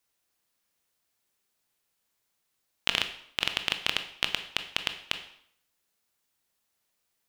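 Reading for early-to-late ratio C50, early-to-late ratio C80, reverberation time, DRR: 11.0 dB, 14.0 dB, 0.65 s, 7.5 dB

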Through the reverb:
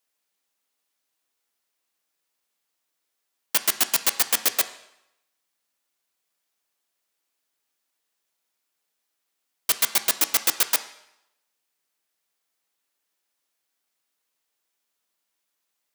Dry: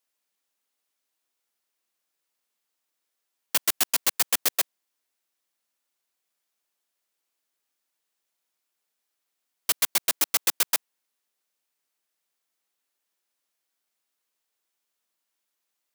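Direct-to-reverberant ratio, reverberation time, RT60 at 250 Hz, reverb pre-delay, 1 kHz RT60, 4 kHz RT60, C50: 9.5 dB, 0.85 s, 0.80 s, 3 ms, 0.90 s, 0.75 s, 13.0 dB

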